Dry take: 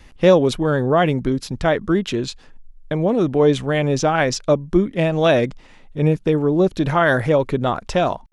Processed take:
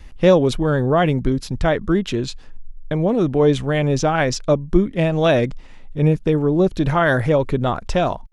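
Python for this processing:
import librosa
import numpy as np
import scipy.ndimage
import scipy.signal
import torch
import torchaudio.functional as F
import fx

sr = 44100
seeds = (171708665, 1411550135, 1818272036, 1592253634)

y = fx.low_shelf(x, sr, hz=91.0, db=10.5)
y = y * 10.0 ** (-1.0 / 20.0)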